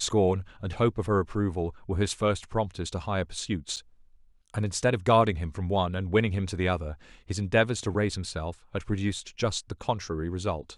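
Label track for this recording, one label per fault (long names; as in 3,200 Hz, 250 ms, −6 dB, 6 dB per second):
3.760000	3.770000	drop-out 7.2 ms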